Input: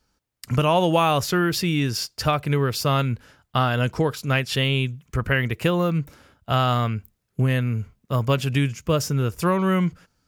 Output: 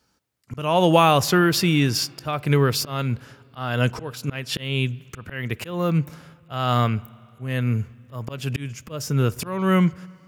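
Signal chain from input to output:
high-pass filter 87 Hz 12 dB per octave
volume swells 323 ms
on a send: convolution reverb RT60 2.8 s, pre-delay 44 ms, DRR 22.5 dB
on the sum: level +3.5 dB

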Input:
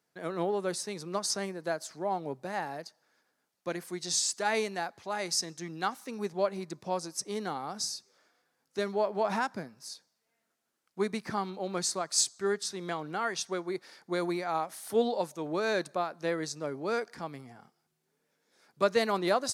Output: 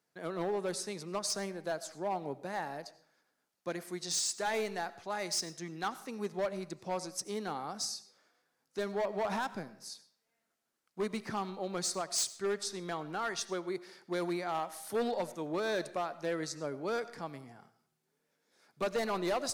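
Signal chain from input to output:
gain into a clipping stage and back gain 25.5 dB
comb and all-pass reverb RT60 0.59 s, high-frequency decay 0.7×, pre-delay 50 ms, DRR 16 dB
level −2.5 dB

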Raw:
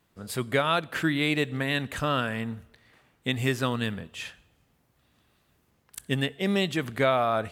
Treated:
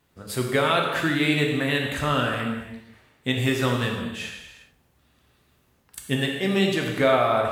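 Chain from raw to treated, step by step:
reverb whose tail is shaped and stops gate 440 ms falling, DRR 0 dB
level +1 dB

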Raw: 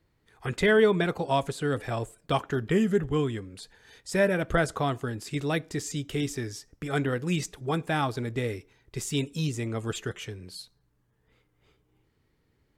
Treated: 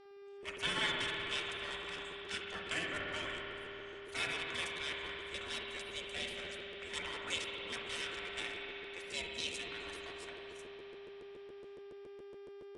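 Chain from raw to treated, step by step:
adaptive Wiener filter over 9 samples
gate on every frequency bin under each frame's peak −25 dB weak
parametric band 820 Hz −5 dB 1.3 octaves
notch comb filter 410 Hz
hum with harmonics 400 Hz, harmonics 14, −65 dBFS −8 dB per octave
convolution reverb RT60 4.3 s, pre-delay 55 ms, DRR −0.5 dB
regular buffer underruns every 0.14 s, samples 512, repeat, from 0:00.42
level +6 dB
AAC 96 kbit/s 22,050 Hz

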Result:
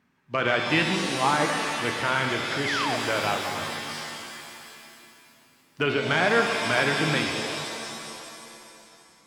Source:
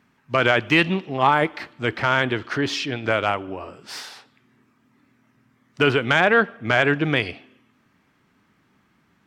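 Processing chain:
sound drawn into the spectrogram fall, 0:02.65–0:02.97, 590–2,300 Hz −23 dBFS
reverb with rising layers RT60 2.5 s, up +7 semitones, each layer −2 dB, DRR 3.5 dB
level −6.5 dB

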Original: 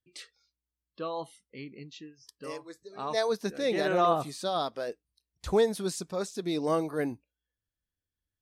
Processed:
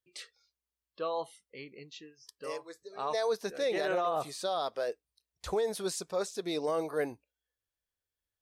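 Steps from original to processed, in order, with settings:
low shelf with overshoot 350 Hz −7 dB, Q 1.5
brickwall limiter −22.5 dBFS, peak gain reduction 10 dB

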